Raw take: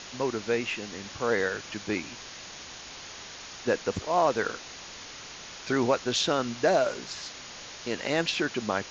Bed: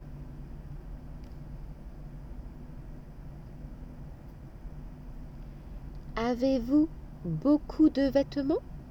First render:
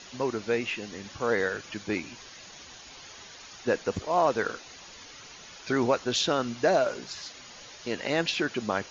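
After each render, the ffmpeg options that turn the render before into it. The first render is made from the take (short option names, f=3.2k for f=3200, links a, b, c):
-af "afftdn=nr=9:nf=-44"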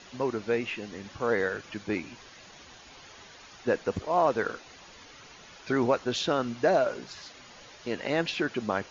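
-af "highshelf=f=4.1k:g=-9.5"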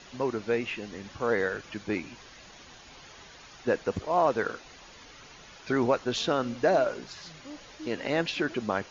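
-filter_complex "[1:a]volume=-20.5dB[a];[0:a][a]amix=inputs=2:normalize=0"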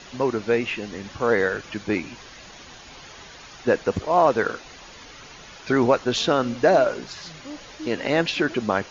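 -af "volume=6.5dB"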